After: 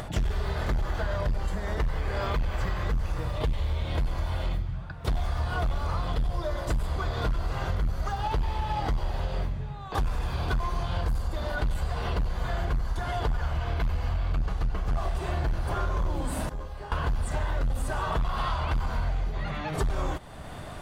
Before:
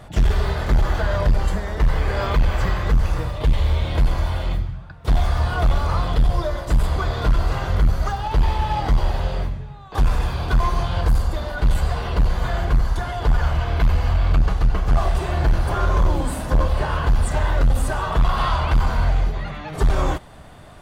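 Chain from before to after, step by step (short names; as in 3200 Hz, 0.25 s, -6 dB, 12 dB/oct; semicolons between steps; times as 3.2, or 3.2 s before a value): upward compressor, threshold -32 dBFS; 16.49–16.92 resonator 410 Hz, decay 0.73 s, mix 90%; compressor 6:1, threshold -25 dBFS, peak gain reduction 11.5 dB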